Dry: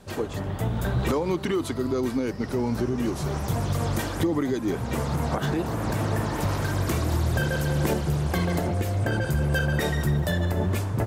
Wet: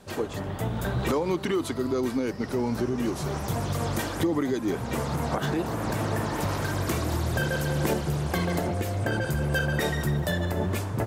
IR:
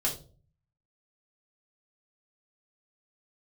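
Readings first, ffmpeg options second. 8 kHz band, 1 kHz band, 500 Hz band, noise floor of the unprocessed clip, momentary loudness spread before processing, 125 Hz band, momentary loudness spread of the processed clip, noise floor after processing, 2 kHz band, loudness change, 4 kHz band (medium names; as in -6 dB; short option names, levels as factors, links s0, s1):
0.0 dB, 0.0 dB, -0.5 dB, -33 dBFS, 3 LU, -3.5 dB, 3 LU, -35 dBFS, 0.0 dB, -1.5 dB, 0.0 dB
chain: -af "lowshelf=f=120:g=-6.5"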